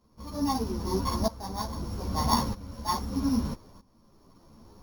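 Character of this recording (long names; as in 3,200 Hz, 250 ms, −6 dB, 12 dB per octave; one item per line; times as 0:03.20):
a buzz of ramps at a fixed pitch in blocks of 8 samples
tremolo saw up 0.79 Hz, depth 85%
a shimmering, thickened sound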